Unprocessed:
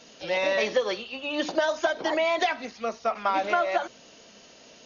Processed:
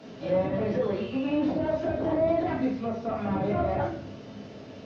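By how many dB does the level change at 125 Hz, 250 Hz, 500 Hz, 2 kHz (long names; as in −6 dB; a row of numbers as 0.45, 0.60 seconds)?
can't be measured, +8.0 dB, −0.5 dB, −12.5 dB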